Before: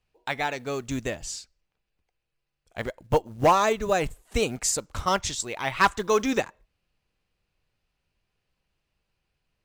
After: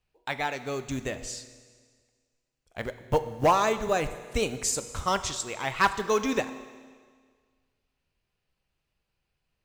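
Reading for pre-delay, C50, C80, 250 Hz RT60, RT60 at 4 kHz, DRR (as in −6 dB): 8 ms, 12.5 dB, 13.5 dB, 1.7 s, 1.7 s, 11.0 dB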